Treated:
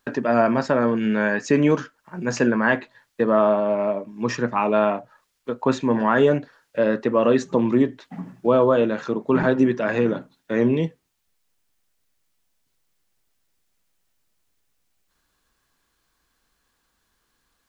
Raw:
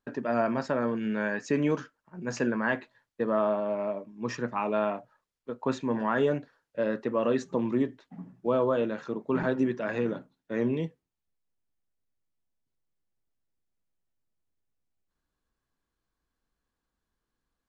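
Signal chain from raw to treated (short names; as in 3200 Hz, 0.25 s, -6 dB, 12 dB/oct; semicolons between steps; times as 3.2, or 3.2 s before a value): mismatched tape noise reduction encoder only; gain +8.5 dB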